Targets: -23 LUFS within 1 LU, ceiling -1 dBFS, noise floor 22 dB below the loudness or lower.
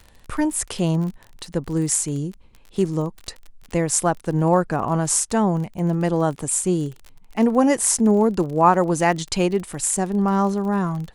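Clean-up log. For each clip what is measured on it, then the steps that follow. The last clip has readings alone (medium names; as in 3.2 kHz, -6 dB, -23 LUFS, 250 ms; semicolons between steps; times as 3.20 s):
tick rate 32 per s; loudness -21.0 LUFS; peak level -3.0 dBFS; loudness target -23.0 LUFS
-> de-click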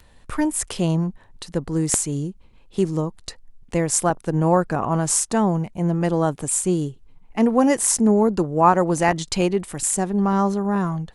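tick rate 0.36 per s; loudness -21.0 LUFS; peak level -3.0 dBFS; loudness target -23.0 LUFS
-> trim -2 dB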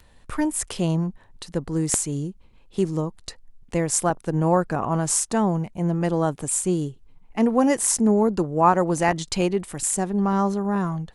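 loudness -23.0 LUFS; peak level -5.0 dBFS; noise floor -53 dBFS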